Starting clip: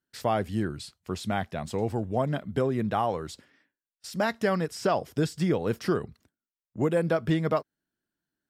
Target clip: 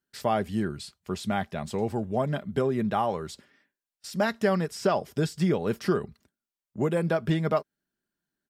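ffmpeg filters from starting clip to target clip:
ffmpeg -i in.wav -af "aecho=1:1:5:0.31" out.wav

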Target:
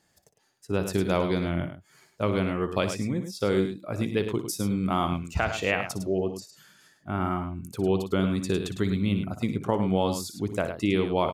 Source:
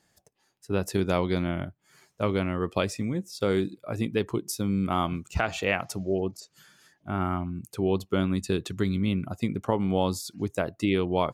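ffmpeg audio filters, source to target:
ffmpeg -i in.wav -af "aecho=1:1:58.31|105:0.251|0.355" out.wav

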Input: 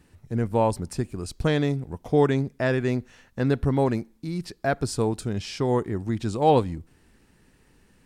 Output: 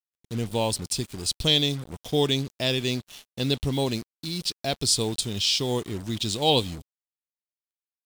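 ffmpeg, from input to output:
ffmpeg -i in.wav -af "highshelf=frequency=2300:width_type=q:width=3:gain=13.5,acrusher=bits=5:mix=0:aa=0.5,volume=-3.5dB" out.wav

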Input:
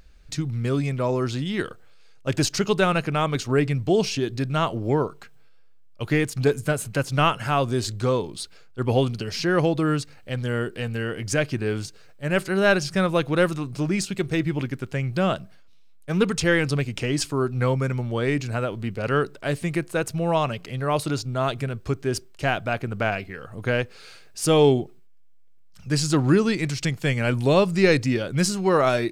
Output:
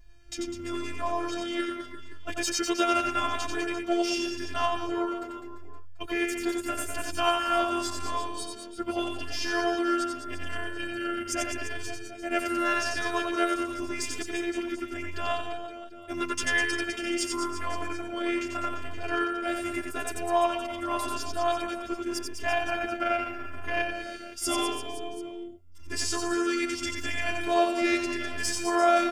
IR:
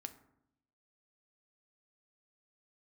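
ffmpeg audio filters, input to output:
-filter_complex "[0:a]aeval=exprs='val(0)*sin(2*PI*44*n/s)':channel_layout=same,asplit=2[link_01][link_02];[link_02]asoftclip=type=hard:threshold=-21dB,volume=-10dB[link_03];[link_01][link_03]amix=inputs=2:normalize=0,bandreject=frequency=4100:width=7.1,afftfilt=real='hypot(re,im)*cos(PI*b)':imag='0':win_size=512:overlap=0.75,aecho=1:1:90|202.5|343.1|518.9|738.6:0.631|0.398|0.251|0.158|0.1,acrossover=split=520[link_04][link_05];[link_04]acompressor=threshold=-32dB:ratio=6[link_06];[link_06][link_05]amix=inputs=2:normalize=0,asplit=2[link_07][link_08];[link_08]adelay=7.1,afreqshift=0.84[link_09];[link_07][link_09]amix=inputs=2:normalize=1,volume=3dB"

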